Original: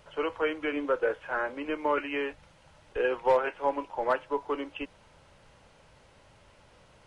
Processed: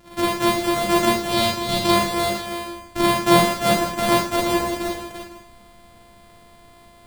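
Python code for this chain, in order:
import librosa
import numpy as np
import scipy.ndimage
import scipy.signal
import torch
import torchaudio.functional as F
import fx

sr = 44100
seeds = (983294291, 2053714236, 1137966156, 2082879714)

y = np.r_[np.sort(x[:len(x) // 128 * 128].reshape(-1, 128), axis=1).ravel(), x[len(x) // 128 * 128:]]
y = fx.graphic_eq_15(y, sr, hz=(100, 1600, 4000), db=(9, -5, 9), at=(1.2, 1.91))
y = fx.echo_multitap(y, sr, ms=(344, 502), db=(-7.0, -16.0))
y = fx.rev_schroeder(y, sr, rt60_s=0.43, comb_ms=31, drr_db=-4.0)
y = y * 10.0 ** (4.5 / 20.0)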